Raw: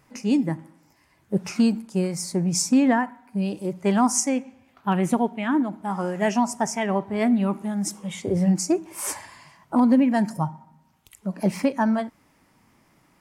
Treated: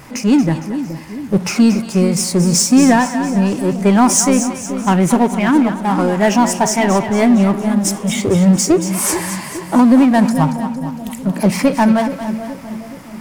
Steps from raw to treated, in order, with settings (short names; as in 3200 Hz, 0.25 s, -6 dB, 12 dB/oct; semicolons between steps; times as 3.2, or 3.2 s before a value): power-law curve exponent 0.7; on a send: split-band echo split 620 Hz, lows 0.424 s, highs 0.229 s, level -10 dB; on the sum: gain +6.5 dB